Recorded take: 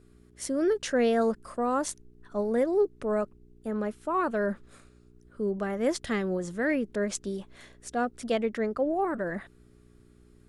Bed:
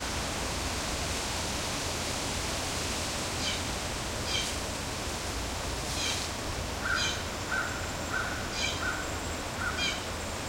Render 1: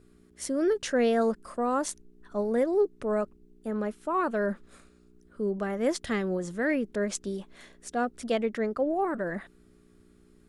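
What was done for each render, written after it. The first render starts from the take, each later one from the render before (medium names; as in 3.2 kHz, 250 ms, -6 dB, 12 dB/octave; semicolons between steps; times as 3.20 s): de-hum 60 Hz, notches 2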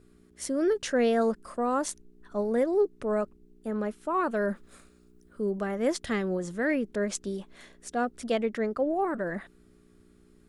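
4.31–5.63 s: treble shelf 9.6 kHz +8 dB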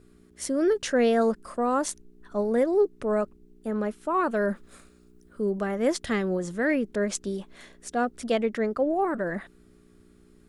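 trim +2.5 dB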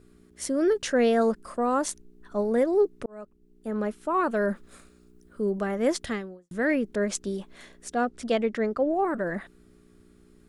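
3.06–3.84 s: fade in; 6.04–6.51 s: fade out quadratic; 7.94–9.05 s: low-pass 8.5 kHz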